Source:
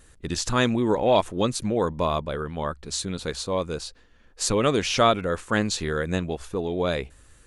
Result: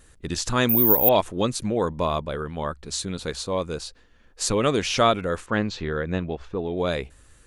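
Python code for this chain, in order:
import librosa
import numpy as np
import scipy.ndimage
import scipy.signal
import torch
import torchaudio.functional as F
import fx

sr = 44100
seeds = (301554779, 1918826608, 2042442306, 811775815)

y = fx.resample_bad(x, sr, factor=3, down='none', up='zero_stuff', at=(0.69, 1.09))
y = fx.air_absorb(y, sr, metres=190.0, at=(5.46, 6.77))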